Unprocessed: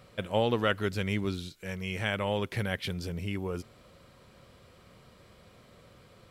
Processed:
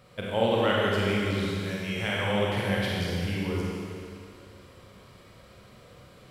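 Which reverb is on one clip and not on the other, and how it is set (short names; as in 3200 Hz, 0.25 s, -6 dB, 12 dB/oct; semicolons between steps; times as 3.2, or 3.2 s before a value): Schroeder reverb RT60 2.5 s, combs from 31 ms, DRR -5 dB; gain -1.5 dB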